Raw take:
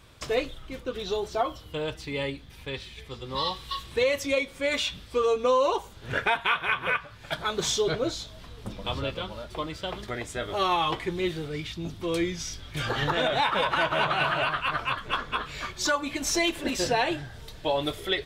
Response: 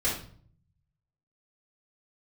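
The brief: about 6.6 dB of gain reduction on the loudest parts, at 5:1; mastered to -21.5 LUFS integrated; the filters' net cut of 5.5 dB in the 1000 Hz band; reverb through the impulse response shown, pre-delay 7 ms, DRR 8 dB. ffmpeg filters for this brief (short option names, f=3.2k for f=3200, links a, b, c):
-filter_complex "[0:a]equalizer=f=1k:t=o:g=-7,acompressor=threshold=-29dB:ratio=5,asplit=2[a][b];[1:a]atrim=start_sample=2205,adelay=7[c];[b][c]afir=irnorm=-1:irlink=0,volume=-17.5dB[d];[a][d]amix=inputs=2:normalize=0,volume=11.5dB"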